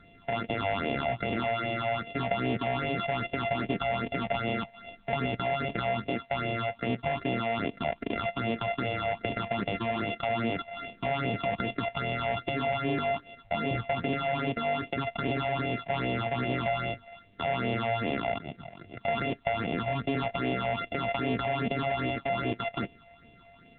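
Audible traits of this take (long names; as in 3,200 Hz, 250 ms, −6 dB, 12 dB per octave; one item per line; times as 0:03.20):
a buzz of ramps at a fixed pitch in blocks of 64 samples
phaser sweep stages 6, 2.5 Hz, lowest notch 320–1,400 Hz
A-law companding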